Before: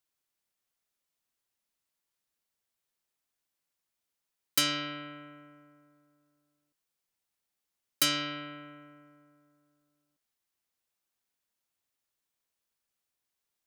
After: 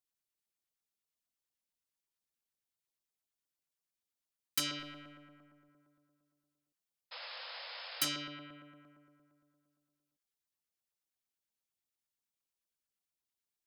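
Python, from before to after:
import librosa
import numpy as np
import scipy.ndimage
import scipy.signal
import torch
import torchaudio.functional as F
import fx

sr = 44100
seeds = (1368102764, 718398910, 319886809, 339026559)

y = fx.halfwave_gain(x, sr, db=-3.0, at=(4.79, 5.69))
y = fx.filter_lfo_notch(y, sr, shape='saw_down', hz=8.7, low_hz=370.0, high_hz=2800.0, q=0.88)
y = fx.spec_paint(y, sr, seeds[0], shape='noise', start_s=7.11, length_s=0.98, low_hz=470.0, high_hz=5300.0, level_db=-40.0)
y = y * librosa.db_to_amplitude(-6.5)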